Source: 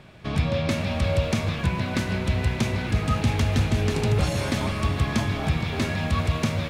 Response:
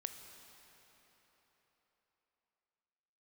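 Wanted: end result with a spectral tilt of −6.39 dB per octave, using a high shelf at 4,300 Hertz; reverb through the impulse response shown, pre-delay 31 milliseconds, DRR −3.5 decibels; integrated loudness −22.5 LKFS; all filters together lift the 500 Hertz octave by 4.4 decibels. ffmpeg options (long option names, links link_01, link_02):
-filter_complex "[0:a]equalizer=frequency=500:width_type=o:gain=5.5,highshelf=frequency=4300:gain=-6.5,asplit=2[link_01][link_02];[1:a]atrim=start_sample=2205,adelay=31[link_03];[link_02][link_03]afir=irnorm=-1:irlink=0,volume=6dB[link_04];[link_01][link_04]amix=inputs=2:normalize=0,volume=-4dB"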